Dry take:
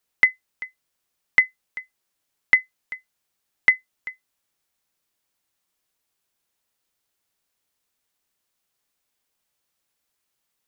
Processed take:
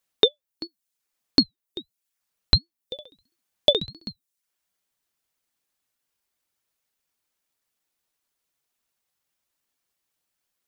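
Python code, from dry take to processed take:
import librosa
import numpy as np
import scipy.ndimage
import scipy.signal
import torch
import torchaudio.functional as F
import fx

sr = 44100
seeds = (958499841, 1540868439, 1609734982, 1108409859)

y = fx.dereverb_blind(x, sr, rt60_s=0.62)
y = fx.room_flutter(y, sr, wall_m=11.4, rt60_s=0.49, at=(2.95, 4.1), fade=0.02)
y = fx.ring_lfo(y, sr, carrier_hz=1900.0, swing_pct=25, hz=1.5)
y = F.gain(torch.from_numpy(y), 2.0).numpy()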